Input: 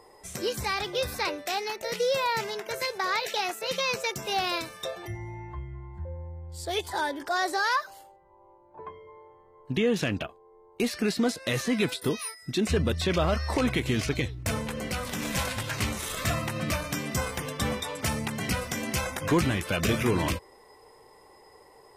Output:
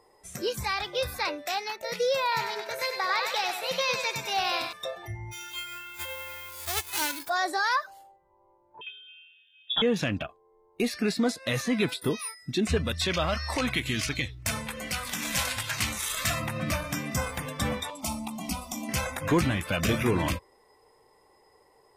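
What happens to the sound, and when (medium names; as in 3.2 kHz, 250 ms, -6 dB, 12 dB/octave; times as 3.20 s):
2.22–4.73 s: thinning echo 97 ms, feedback 53%, high-pass 470 Hz, level -5.5 dB
5.31–7.28 s: formants flattened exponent 0.1
8.81–9.82 s: frequency inversion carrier 3.6 kHz
12.77–16.40 s: tilt shelf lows -4.5 dB, about 1.2 kHz
17.90–18.89 s: static phaser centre 450 Hz, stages 6
whole clip: spectral noise reduction 7 dB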